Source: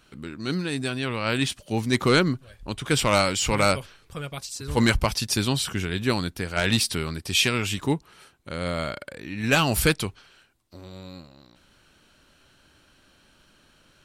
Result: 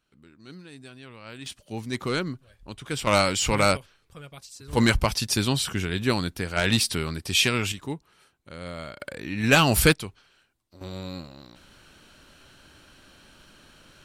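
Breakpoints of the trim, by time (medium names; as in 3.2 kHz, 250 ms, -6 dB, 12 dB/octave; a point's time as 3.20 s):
-17 dB
from 1.46 s -8 dB
from 3.07 s 0 dB
from 3.77 s -9.5 dB
from 4.73 s 0 dB
from 7.72 s -8.5 dB
from 9.00 s +2.5 dB
from 9.93 s -6.5 dB
from 10.81 s +5.5 dB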